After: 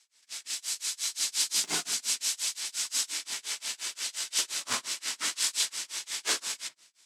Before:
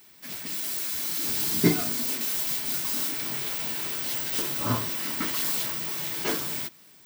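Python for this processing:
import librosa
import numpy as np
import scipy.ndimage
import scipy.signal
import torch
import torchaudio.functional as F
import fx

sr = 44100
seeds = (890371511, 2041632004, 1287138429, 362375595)

p1 = fx.halfwave_hold(x, sr)
p2 = scipy.signal.sosfilt(scipy.signal.butter(4, 8200.0, 'lowpass', fs=sr, output='sos'), p1)
p3 = fx.echo_filtered(p2, sr, ms=66, feedback_pct=47, hz=960.0, wet_db=-5.0)
p4 = np.clip(10.0 ** (17.5 / 20.0) * p3, -1.0, 1.0) / 10.0 ** (17.5 / 20.0)
p5 = p3 + F.gain(torch.from_numpy(p4), -10.0).numpy()
p6 = fx.low_shelf(p5, sr, hz=120.0, db=-10.0)
p7 = p6 * (1.0 - 0.98 / 2.0 + 0.98 / 2.0 * np.cos(2.0 * np.pi * 5.7 * (np.arange(len(p6)) / sr)))
p8 = np.diff(p7, prepend=0.0)
p9 = fx.band_widen(p8, sr, depth_pct=40)
y = F.gain(torch.from_numpy(p9), 5.0).numpy()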